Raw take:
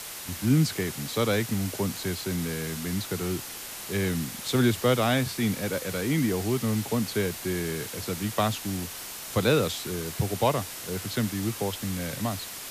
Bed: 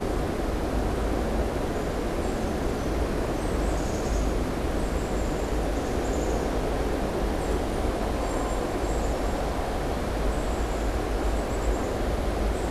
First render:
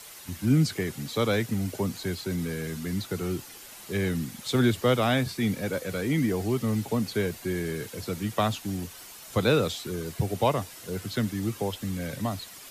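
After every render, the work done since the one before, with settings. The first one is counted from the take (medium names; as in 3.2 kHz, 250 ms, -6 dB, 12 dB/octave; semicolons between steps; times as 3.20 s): noise reduction 9 dB, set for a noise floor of -39 dBFS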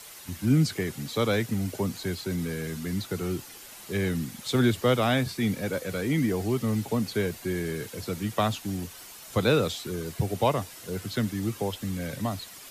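no audible change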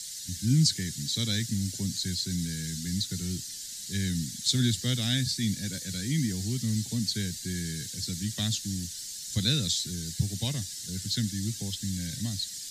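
FFT filter 170 Hz 0 dB, 260 Hz -5 dB, 450 Hz -20 dB, 690 Hz -20 dB, 1.2 kHz -25 dB, 1.7 kHz -4 dB, 2.5 kHz -9 dB, 4 kHz +9 dB, 7.5 kHz +11 dB, 12 kHz -2 dB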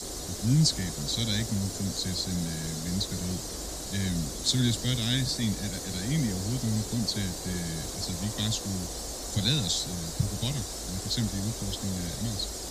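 add bed -13.5 dB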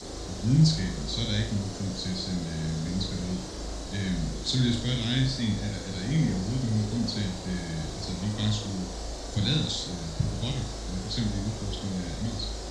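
distance through air 110 m; flutter echo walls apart 6.5 m, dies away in 0.46 s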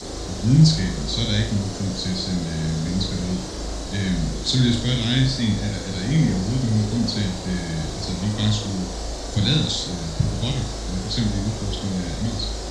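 trim +6.5 dB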